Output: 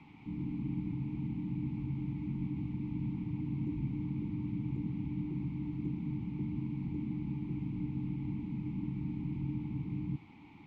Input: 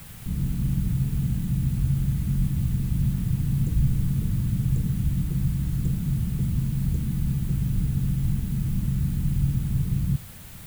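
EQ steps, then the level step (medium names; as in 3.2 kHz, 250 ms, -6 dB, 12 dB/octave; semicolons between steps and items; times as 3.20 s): vowel filter u; distance through air 170 m; +8.0 dB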